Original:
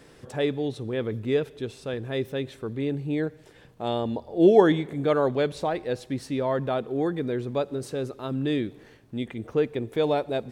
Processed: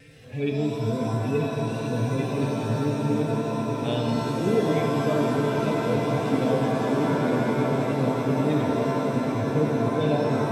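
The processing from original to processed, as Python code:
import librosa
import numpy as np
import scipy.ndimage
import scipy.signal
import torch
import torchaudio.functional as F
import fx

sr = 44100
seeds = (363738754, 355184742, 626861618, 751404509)

y = fx.hpss_only(x, sr, part='harmonic')
y = fx.graphic_eq_15(y, sr, hz=(100, 250, 1000, 2500), db=(11, 6, -10, 12))
y = fx.rider(y, sr, range_db=4, speed_s=0.5)
y = fx.peak_eq(y, sr, hz=360.0, db=-9.5, octaves=0.35)
y = fx.echo_swell(y, sr, ms=195, loudest=8, wet_db=-12.5)
y = fx.vibrato(y, sr, rate_hz=1.8, depth_cents=24.0)
y = fx.rev_shimmer(y, sr, seeds[0], rt60_s=2.5, semitones=7, shimmer_db=-2, drr_db=1.5)
y = y * 10.0 ** (-2.5 / 20.0)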